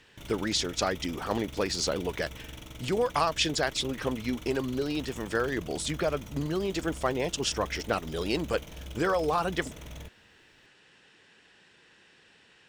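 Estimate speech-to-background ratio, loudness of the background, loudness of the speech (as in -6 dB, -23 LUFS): 14.0 dB, -44.0 LUFS, -30.0 LUFS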